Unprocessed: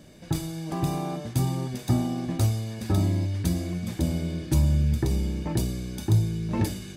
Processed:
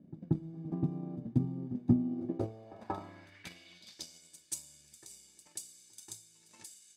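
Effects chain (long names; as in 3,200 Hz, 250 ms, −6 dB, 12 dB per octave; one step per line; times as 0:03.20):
transient designer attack +10 dB, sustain −3 dB
backwards echo 183 ms −17.5 dB
band-pass filter sweep 230 Hz → 7,900 Hz, 0:02.02–0:04.27
level −4 dB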